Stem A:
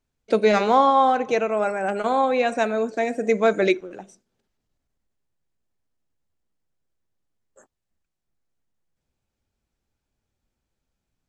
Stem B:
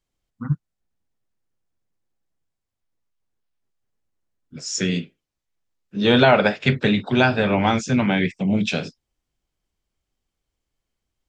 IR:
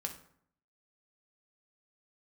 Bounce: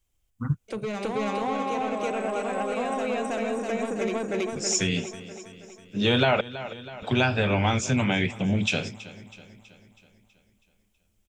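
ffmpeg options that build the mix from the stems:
-filter_complex "[0:a]acrossover=split=340[s0][s1];[s1]acompressor=threshold=0.0501:ratio=4[s2];[s0][s2]amix=inputs=2:normalize=0,asoftclip=type=tanh:threshold=0.0944,adelay=400,volume=1.06,asplit=2[s3][s4];[s4]volume=0.708[s5];[1:a]lowshelf=f=120:t=q:w=1.5:g=7.5,volume=0.944,asplit=3[s6][s7][s8];[s6]atrim=end=6.41,asetpts=PTS-STARTPTS,afade=t=out:st=6.406:d=0.004:c=hsin[s9];[s7]atrim=start=6.41:end=7.02,asetpts=PTS-STARTPTS,volume=0[s10];[s8]atrim=start=7.02,asetpts=PTS-STARTPTS,afade=t=in:d=0.004:c=hsin[s11];[s9][s10][s11]concat=n=3:v=0:a=1,asplit=3[s12][s13][s14];[s13]volume=0.0944[s15];[s14]apad=whole_len=515112[s16];[s3][s16]sidechaingate=range=0.501:threshold=0.0112:ratio=16:detection=peak[s17];[s5][s15]amix=inputs=2:normalize=0,aecho=0:1:324|648|972|1296|1620|1944|2268|2592:1|0.54|0.292|0.157|0.085|0.0459|0.0248|0.0134[s18];[s17][s12][s18]amix=inputs=3:normalize=0,aexciter=amount=1.7:drive=3.5:freq=2400,acompressor=threshold=0.0708:ratio=2"

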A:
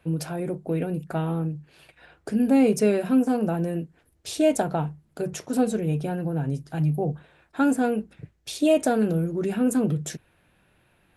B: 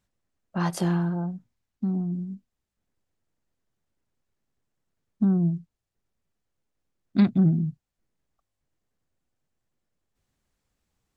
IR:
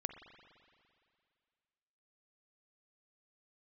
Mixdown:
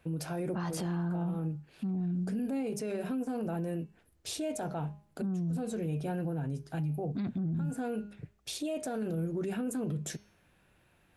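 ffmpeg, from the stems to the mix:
-filter_complex "[0:a]bandreject=f=205.3:t=h:w=4,bandreject=f=410.6:t=h:w=4,bandreject=f=615.9:t=h:w=4,bandreject=f=821.2:t=h:w=4,bandreject=f=1026.5:t=h:w=4,bandreject=f=1231.8:t=h:w=4,bandreject=f=1437.1:t=h:w=4,bandreject=f=1642.4:t=h:w=4,bandreject=f=1847.7:t=h:w=4,bandreject=f=2053:t=h:w=4,bandreject=f=2258.3:t=h:w=4,bandreject=f=2463.6:t=h:w=4,bandreject=f=2668.9:t=h:w=4,bandreject=f=2874.2:t=h:w=4,bandreject=f=3079.5:t=h:w=4,bandreject=f=3284.8:t=h:w=4,bandreject=f=3490.1:t=h:w=4,bandreject=f=3695.4:t=h:w=4,bandreject=f=3900.7:t=h:w=4,bandreject=f=4106:t=h:w=4,bandreject=f=4311.3:t=h:w=4,bandreject=f=4516.6:t=h:w=4,bandreject=f=4721.9:t=h:w=4,bandreject=f=4927.2:t=h:w=4,bandreject=f=5132.5:t=h:w=4,bandreject=f=5337.8:t=h:w=4,bandreject=f=5543.1:t=h:w=4,bandreject=f=5748.4:t=h:w=4,bandreject=f=5953.7:t=h:w=4,bandreject=f=6159:t=h:w=4,bandreject=f=6364.3:t=h:w=4,acompressor=threshold=0.0562:ratio=3,volume=0.631[s0];[1:a]alimiter=limit=0.112:level=0:latency=1,volume=0.944,asplit=2[s1][s2];[s2]apad=whole_len=492408[s3];[s0][s3]sidechaincompress=threshold=0.0141:ratio=8:attack=45:release=126[s4];[s4][s1]amix=inputs=2:normalize=0,alimiter=level_in=1.5:limit=0.0631:level=0:latency=1:release=12,volume=0.668"

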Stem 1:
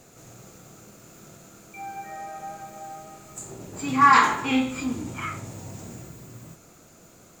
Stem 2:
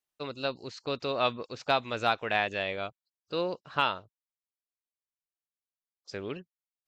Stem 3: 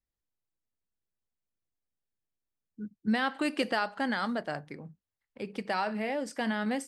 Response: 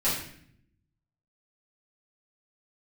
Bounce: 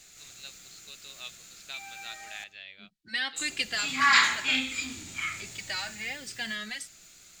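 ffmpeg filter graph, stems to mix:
-filter_complex "[0:a]volume=0.631,asplit=3[s0][s1][s2];[s0]atrim=end=2.44,asetpts=PTS-STARTPTS,afade=t=out:st=2.436:d=0.004:c=hsin[s3];[s1]atrim=start=2.44:end=3.36,asetpts=PTS-STARTPTS,volume=0[s4];[s2]atrim=start=3.36,asetpts=PTS-STARTPTS,afade=t=in:d=0.004:c=hsin[s5];[s3][s4][s5]concat=n=3:v=0:a=1,asplit=2[s6][s7];[s7]volume=0.0794[s8];[1:a]volume=0.133[s9];[2:a]asplit=2[s10][s11];[s11]adelay=2.6,afreqshift=-0.75[s12];[s10][s12]amix=inputs=2:normalize=1,volume=1.12[s13];[3:a]atrim=start_sample=2205[s14];[s8][s14]afir=irnorm=-1:irlink=0[s15];[s6][s9][s13][s15]amix=inputs=4:normalize=0,equalizer=f=125:t=o:w=1:g=-11,equalizer=f=250:t=o:w=1:g=-9,equalizer=f=500:t=o:w=1:g=-11,equalizer=f=1000:t=o:w=1:g=-9,equalizer=f=2000:t=o:w=1:g=6,equalizer=f=4000:t=o:w=1:g=10,equalizer=f=8000:t=o:w=1:g=4"

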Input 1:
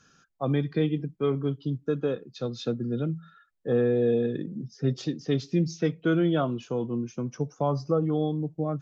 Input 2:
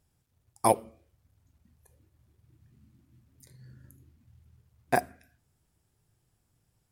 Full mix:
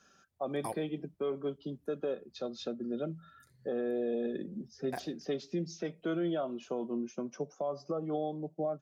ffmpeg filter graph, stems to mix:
-filter_complex "[0:a]highpass=f=200:w=0.5412,highpass=f=200:w=1.3066,equalizer=f=640:w=2.7:g=9.5,aecho=1:1:5.2:0.36,volume=0.596[s0];[1:a]volume=0.282[s1];[s0][s1]amix=inputs=2:normalize=0,alimiter=level_in=1.19:limit=0.0631:level=0:latency=1:release=243,volume=0.841"

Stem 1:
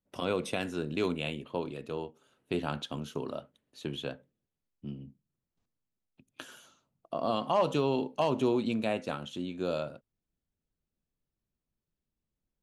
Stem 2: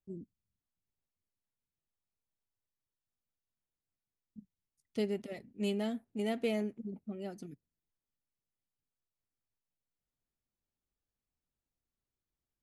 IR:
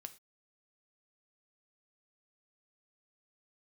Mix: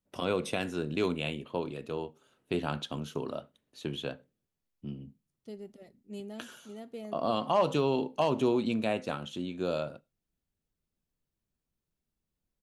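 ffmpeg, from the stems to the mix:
-filter_complex "[0:a]volume=0.841,asplit=3[s0][s1][s2];[s1]volume=0.562[s3];[1:a]equalizer=f=2300:w=1.8:g=-7.5,acontrast=39,adelay=500,volume=0.158,asplit=2[s4][s5];[s5]volume=0.596[s6];[s2]apad=whole_len=578807[s7];[s4][s7]sidechaincompress=threshold=0.00447:ratio=8:attack=20:release=1140[s8];[2:a]atrim=start_sample=2205[s9];[s3][s6]amix=inputs=2:normalize=0[s10];[s10][s9]afir=irnorm=-1:irlink=0[s11];[s0][s8][s11]amix=inputs=3:normalize=0"

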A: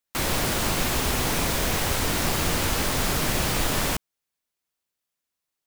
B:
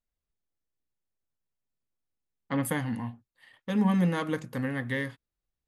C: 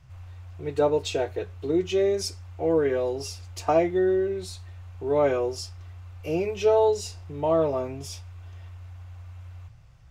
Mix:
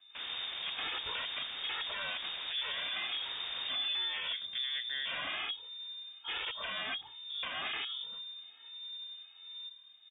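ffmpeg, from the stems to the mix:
-filter_complex "[0:a]volume=0.168[s0];[1:a]bandreject=f=2800:w=12,volume=0.708,asplit=2[s1][s2];[2:a]aeval=exprs='(mod(15.8*val(0)+1,2)-1)/15.8':c=same,asplit=2[s3][s4];[s4]adelay=2,afreqshift=-1.3[s5];[s3][s5]amix=inputs=2:normalize=1,volume=0.75[s6];[s2]apad=whole_len=249931[s7];[s0][s7]sidechaincompress=threshold=0.0141:ratio=8:attack=16:release=127[s8];[s8][s1][s6]amix=inputs=3:normalize=0,lowpass=f=3100:t=q:w=0.5098,lowpass=f=3100:t=q:w=0.6013,lowpass=f=3100:t=q:w=0.9,lowpass=f=3100:t=q:w=2.563,afreqshift=-3700,alimiter=level_in=1.58:limit=0.0631:level=0:latency=1:release=92,volume=0.631"

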